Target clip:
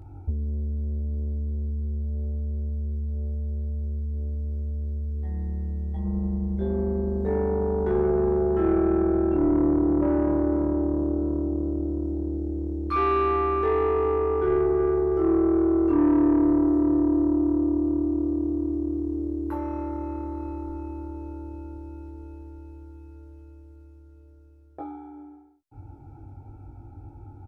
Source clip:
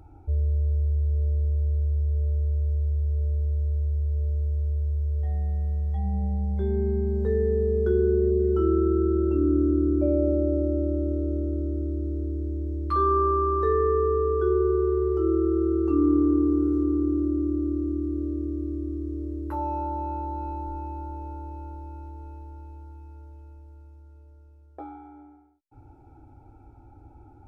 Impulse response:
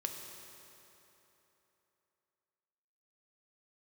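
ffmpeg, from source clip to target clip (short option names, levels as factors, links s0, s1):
-filter_complex "[0:a]equalizer=f=120:t=o:w=2:g=8,asoftclip=type=tanh:threshold=0.126,asplit=2[s0][s1];[s1]adelay=21,volume=0.596[s2];[s0][s2]amix=inputs=2:normalize=0"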